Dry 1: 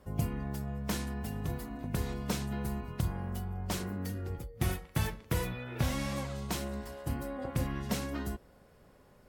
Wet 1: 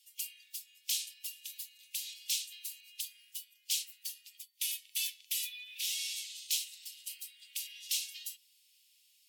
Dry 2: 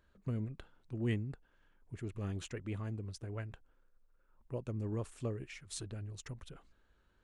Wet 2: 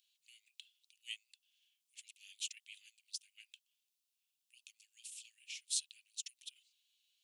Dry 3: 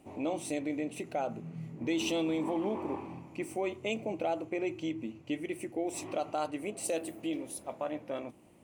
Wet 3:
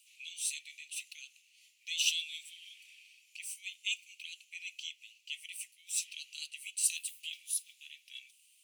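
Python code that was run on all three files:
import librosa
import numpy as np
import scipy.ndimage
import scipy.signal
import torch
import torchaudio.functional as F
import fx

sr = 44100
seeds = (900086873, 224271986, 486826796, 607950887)

y = scipy.signal.sosfilt(scipy.signal.butter(8, 2700.0, 'highpass', fs=sr, output='sos'), x)
y = F.gain(torch.from_numpy(y), 8.5).numpy()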